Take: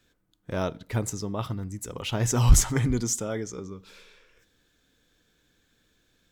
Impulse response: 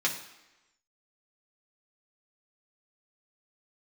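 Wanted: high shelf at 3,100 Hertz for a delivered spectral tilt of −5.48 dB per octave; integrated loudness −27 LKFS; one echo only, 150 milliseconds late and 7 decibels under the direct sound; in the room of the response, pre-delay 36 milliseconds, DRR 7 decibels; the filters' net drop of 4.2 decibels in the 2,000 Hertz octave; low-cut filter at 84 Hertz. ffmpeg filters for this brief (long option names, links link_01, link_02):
-filter_complex "[0:a]highpass=84,equalizer=frequency=2000:width_type=o:gain=-4,highshelf=frequency=3100:gain=-5,aecho=1:1:150:0.447,asplit=2[link_01][link_02];[1:a]atrim=start_sample=2205,adelay=36[link_03];[link_02][link_03]afir=irnorm=-1:irlink=0,volume=-16dB[link_04];[link_01][link_04]amix=inputs=2:normalize=0,volume=0.5dB"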